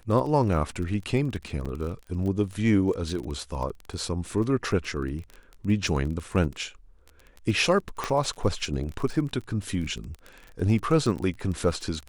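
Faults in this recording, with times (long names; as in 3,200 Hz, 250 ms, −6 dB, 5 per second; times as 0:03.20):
surface crackle 23 per second −32 dBFS
0:01.65–0:01.66: drop-out 5.8 ms
0:08.04: click −14 dBFS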